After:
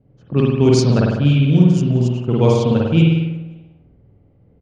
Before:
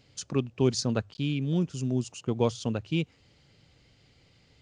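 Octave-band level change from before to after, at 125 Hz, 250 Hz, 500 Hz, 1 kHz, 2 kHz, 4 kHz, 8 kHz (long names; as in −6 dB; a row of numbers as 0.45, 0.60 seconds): +16.5 dB, +14.0 dB, +13.0 dB, +12.0 dB, +11.0 dB, +8.0 dB, can't be measured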